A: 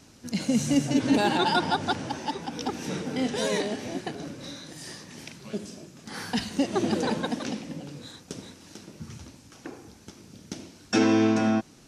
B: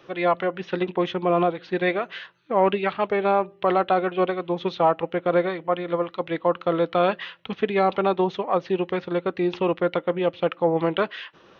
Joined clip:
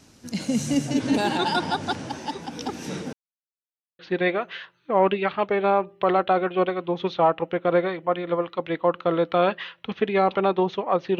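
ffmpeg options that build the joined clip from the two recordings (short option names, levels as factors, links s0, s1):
-filter_complex "[0:a]apad=whole_dur=11.19,atrim=end=11.19,asplit=2[s0][s1];[s0]atrim=end=3.13,asetpts=PTS-STARTPTS,afade=t=out:st=3.126:d=0.004:c=hsin[s2];[s1]atrim=start=3.13:end=3.99,asetpts=PTS-STARTPTS,volume=0[s3];[1:a]atrim=start=1.6:end=8.8,asetpts=PTS-STARTPTS,afade=t=in:d=0.004:c=hsin[s4];[s2][s3][s4]concat=n=3:v=0:a=1"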